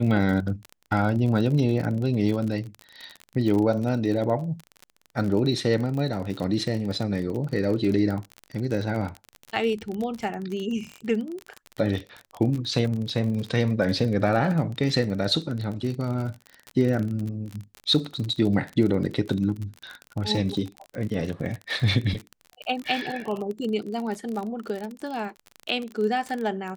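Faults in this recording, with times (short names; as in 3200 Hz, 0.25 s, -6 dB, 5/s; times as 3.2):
crackle 38/s -29 dBFS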